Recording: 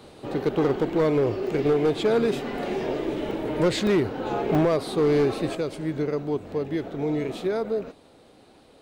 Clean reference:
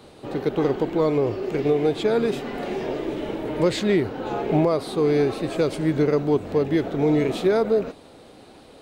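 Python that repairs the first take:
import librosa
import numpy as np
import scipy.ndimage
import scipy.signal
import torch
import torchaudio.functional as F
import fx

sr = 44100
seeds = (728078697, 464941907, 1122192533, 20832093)

y = fx.fix_declip(x, sr, threshold_db=-16.0)
y = fx.fix_interpolate(y, sr, at_s=(1.47, 3.31, 3.87, 4.55), length_ms=1.6)
y = fx.gain(y, sr, db=fx.steps((0.0, 0.0), (5.55, 6.5)))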